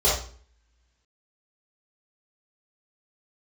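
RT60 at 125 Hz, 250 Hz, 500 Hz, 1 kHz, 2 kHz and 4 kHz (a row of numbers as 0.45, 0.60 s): 0.55, 0.60, 0.45, 0.45, 0.45, 0.40 s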